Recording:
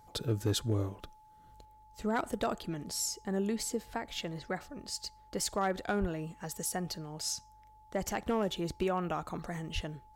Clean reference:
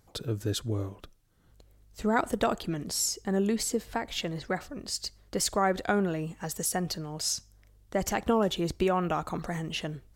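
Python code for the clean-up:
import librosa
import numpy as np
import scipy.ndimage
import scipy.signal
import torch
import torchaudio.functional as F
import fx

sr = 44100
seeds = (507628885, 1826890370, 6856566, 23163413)

y = fx.fix_declip(x, sr, threshold_db=-22.5)
y = fx.notch(y, sr, hz=860.0, q=30.0)
y = fx.highpass(y, sr, hz=140.0, slope=24, at=(6.0, 6.12), fade=0.02)
y = fx.highpass(y, sr, hz=140.0, slope=24, at=(9.74, 9.86), fade=0.02)
y = fx.fix_level(y, sr, at_s=1.65, step_db=5.5)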